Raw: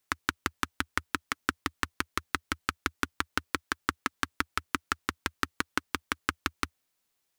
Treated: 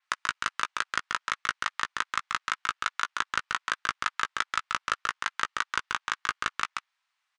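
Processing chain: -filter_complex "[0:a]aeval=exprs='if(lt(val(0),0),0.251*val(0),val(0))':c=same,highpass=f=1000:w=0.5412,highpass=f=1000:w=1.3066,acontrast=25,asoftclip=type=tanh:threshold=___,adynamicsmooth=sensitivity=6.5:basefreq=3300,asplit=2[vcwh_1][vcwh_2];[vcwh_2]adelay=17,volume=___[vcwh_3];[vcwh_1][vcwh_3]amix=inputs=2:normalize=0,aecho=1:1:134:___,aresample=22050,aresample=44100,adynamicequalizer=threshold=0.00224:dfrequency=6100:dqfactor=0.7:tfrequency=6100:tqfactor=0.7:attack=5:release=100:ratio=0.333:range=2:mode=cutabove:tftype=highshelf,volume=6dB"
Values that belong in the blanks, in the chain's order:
-18.5dB, -10dB, 0.596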